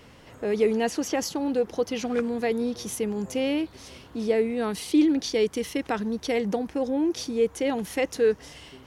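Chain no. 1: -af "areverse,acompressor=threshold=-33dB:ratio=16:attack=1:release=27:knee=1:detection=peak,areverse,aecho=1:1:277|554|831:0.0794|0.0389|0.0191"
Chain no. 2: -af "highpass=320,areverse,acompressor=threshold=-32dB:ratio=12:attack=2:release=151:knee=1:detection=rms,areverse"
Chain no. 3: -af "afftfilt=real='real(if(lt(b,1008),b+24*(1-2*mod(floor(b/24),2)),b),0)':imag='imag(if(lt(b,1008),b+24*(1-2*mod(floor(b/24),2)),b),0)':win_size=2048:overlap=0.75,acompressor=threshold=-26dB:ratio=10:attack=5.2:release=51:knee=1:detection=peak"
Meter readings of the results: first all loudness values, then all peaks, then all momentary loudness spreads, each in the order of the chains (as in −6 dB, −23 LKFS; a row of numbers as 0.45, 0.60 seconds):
−37.0, −38.0, −30.5 LKFS; −25.0, −26.0, −18.5 dBFS; 4, 5, 4 LU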